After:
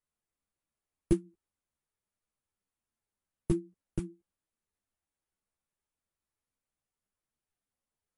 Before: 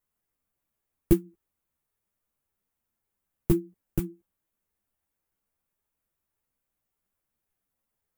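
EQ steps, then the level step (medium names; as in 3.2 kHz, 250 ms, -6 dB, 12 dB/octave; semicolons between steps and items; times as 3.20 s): brick-wall FIR low-pass 11 kHz; -6.0 dB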